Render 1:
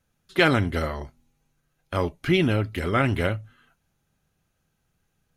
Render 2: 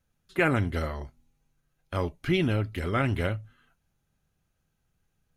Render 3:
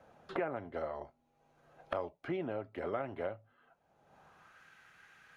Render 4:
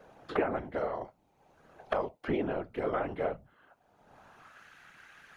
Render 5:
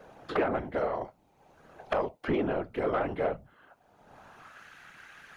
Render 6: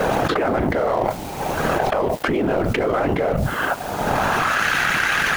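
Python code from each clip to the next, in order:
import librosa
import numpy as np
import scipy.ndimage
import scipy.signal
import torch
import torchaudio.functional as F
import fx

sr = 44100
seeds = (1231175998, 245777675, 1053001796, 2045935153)

y1 = fx.low_shelf(x, sr, hz=87.0, db=6.5)
y1 = fx.spec_box(y1, sr, start_s=0.36, length_s=0.2, low_hz=2900.0, high_hz=6500.0, gain_db=-15)
y1 = y1 * librosa.db_to_amplitude(-5.0)
y2 = fx.filter_sweep_bandpass(y1, sr, from_hz=680.0, to_hz=1700.0, start_s=4.06, end_s=4.65, q=2.0)
y2 = fx.band_squash(y2, sr, depth_pct=100)
y2 = y2 * librosa.db_to_amplitude(-1.5)
y3 = fx.whisperise(y2, sr, seeds[0])
y3 = y3 * librosa.db_to_amplitude(5.5)
y4 = 10.0 ** (-22.5 / 20.0) * np.tanh(y3 / 10.0 ** (-22.5 / 20.0))
y4 = y4 * librosa.db_to_amplitude(4.0)
y5 = fx.law_mismatch(y4, sr, coded='A')
y5 = fx.env_flatten(y5, sr, amount_pct=100)
y5 = y5 * librosa.db_to_amplitude(5.0)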